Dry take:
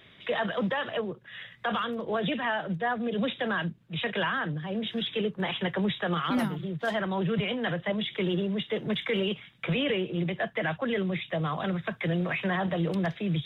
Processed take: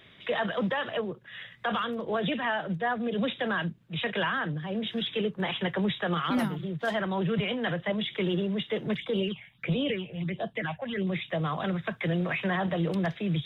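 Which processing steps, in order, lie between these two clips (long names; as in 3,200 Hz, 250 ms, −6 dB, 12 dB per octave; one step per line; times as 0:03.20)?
0:08.96–0:11.07: all-pass phaser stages 6, 1.5 Hz, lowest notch 310–2,100 Hz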